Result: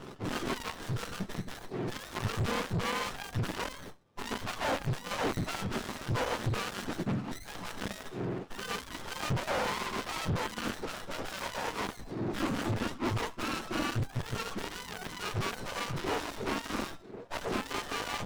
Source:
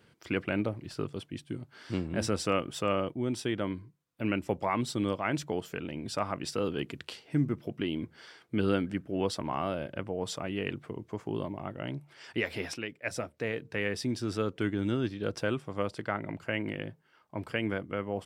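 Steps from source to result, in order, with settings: spectrum mirrored in octaves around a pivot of 770 Hz; overdrive pedal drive 37 dB, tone 4200 Hz, clips at -17 dBFS; running maximum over 17 samples; gain -5 dB

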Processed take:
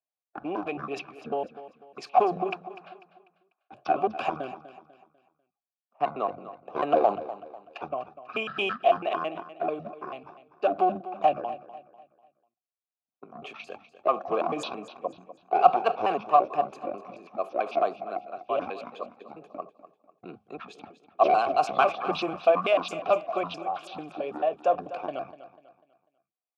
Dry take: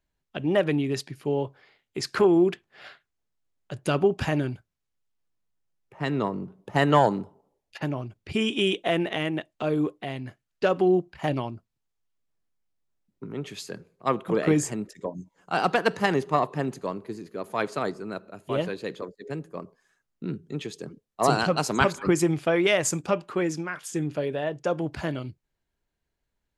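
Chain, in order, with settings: trilling pitch shifter -11 st, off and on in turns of 0.11 s; gate -45 dBFS, range -15 dB; HPF 170 Hz 12 dB/oct; transient shaper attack +4 dB, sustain +8 dB; tremolo 2.3 Hz, depth 30%; in parallel at -9 dB: wavefolder -20 dBFS; on the sum: vowel filter a; on a send: feedback echo 0.247 s, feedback 38%, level -14.5 dB; on the sum: gain +9 dB

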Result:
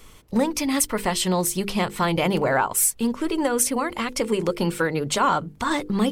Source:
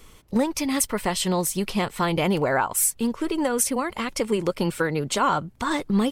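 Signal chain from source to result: notches 50/100/150/200/250/300/350/400/450/500 Hz; in parallel at -12 dB: soft clip -17.5 dBFS, distortion -16 dB

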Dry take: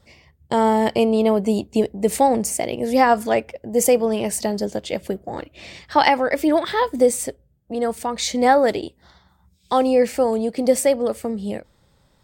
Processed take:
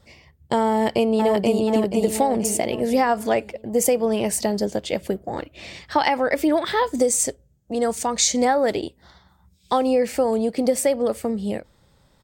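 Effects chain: 0.71–1.67 echo throw 0.48 s, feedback 40%, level -2 dB; 6.86–8.45 bell 6700 Hz +11 dB 0.86 oct; compressor, threshold -16 dBFS, peak gain reduction 7 dB; gain +1 dB

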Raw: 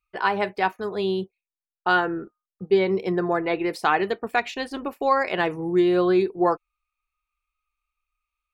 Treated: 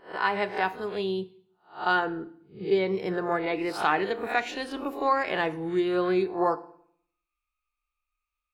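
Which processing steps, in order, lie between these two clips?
spectral swells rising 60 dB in 0.35 s; FDN reverb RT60 0.63 s, low-frequency decay 1.25×, high-frequency decay 0.9×, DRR 12.5 dB; gain -4.5 dB

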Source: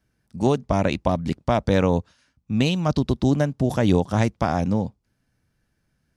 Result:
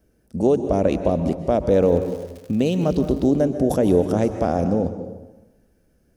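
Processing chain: graphic EQ 125/500/1000/2000/4000/8000 Hz -10/+7/-10/-8/-10/-4 dB; in parallel at -2 dB: negative-ratio compressor -32 dBFS, ratio -1; 1.77–3.27 on the sum: crackle 140/s -35 dBFS; plate-style reverb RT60 1.1 s, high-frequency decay 0.7×, pre-delay 0.115 s, DRR 9 dB; gain +1 dB

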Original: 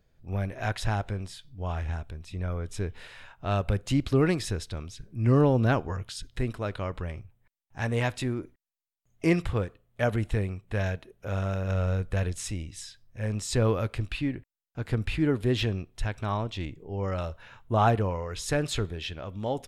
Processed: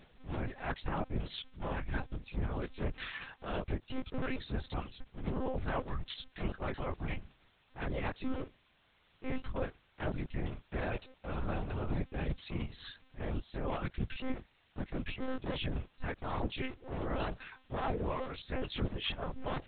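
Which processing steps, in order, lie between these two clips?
cycle switcher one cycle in 2, muted; reverb removal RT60 1.3 s; reverse; compressor 10:1, threshold -42 dBFS, peak gain reduction 23 dB; reverse; chorus 2.3 Hz, delay 15 ms, depth 7.2 ms; in parallel at -6 dB: one-sided clip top -44 dBFS; on the sum: added noise white -73 dBFS; monotone LPC vocoder at 8 kHz 260 Hz; gain +10 dB

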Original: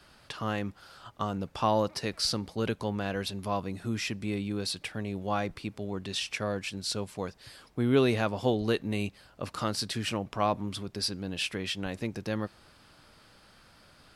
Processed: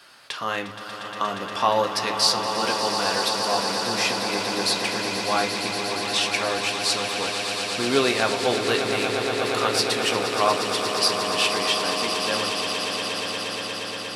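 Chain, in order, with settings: HPF 910 Hz 6 dB/oct; swelling echo 0.118 s, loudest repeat 8, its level -10.5 dB; on a send at -5.5 dB: reverb RT60 0.45 s, pre-delay 3 ms; on the sum: gain +9 dB

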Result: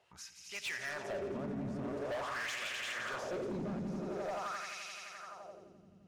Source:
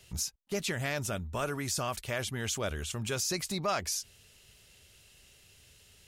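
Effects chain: swelling echo 86 ms, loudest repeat 5, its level -8 dB; LFO band-pass sine 0.46 Hz 210–2600 Hz; hard clip -38.5 dBFS, distortion -10 dB; gain +3.5 dB

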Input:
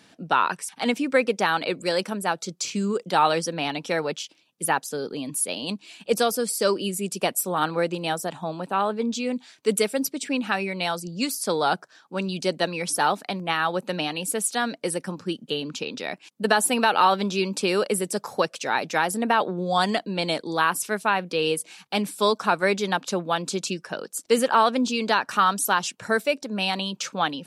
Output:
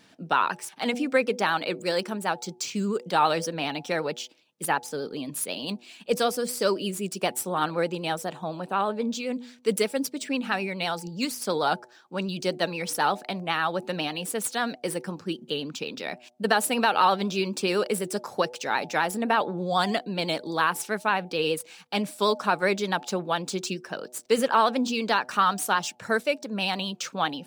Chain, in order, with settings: median filter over 3 samples; de-hum 122.4 Hz, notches 7; vibrato 12 Hz 50 cents; gain -2 dB

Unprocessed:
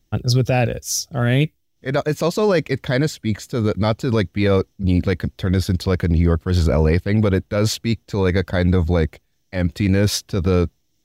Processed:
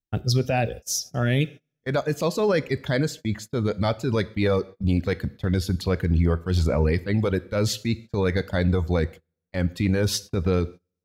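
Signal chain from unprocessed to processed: reverb removal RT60 0.76 s; two-slope reverb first 0.55 s, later 2.5 s, from -25 dB, DRR 14.5 dB; gate -32 dBFS, range -24 dB; gain -4 dB

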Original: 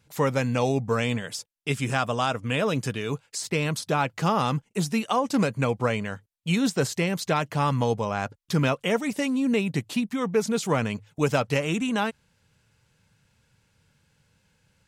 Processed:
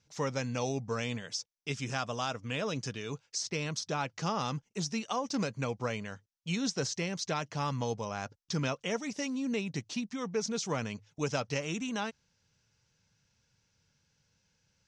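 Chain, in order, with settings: ladder low-pass 6400 Hz, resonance 65%; gain +1.5 dB

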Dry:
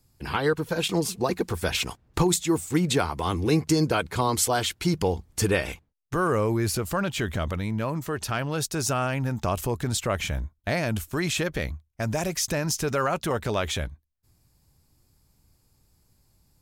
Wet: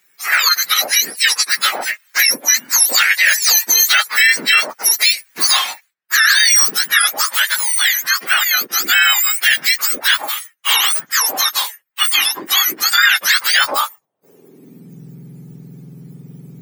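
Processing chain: spectrum mirrored in octaves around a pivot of 1400 Hz; high-pass sweep 1800 Hz -> 140 Hz, 13.54–15.05; maximiser +19 dB; gain -1 dB

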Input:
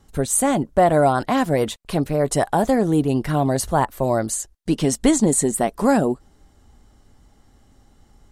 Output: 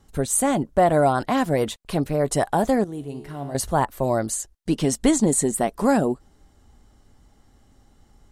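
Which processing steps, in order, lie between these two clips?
2.84–3.55 resonator 71 Hz, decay 1.4 s, harmonics all, mix 80%; gain -2 dB

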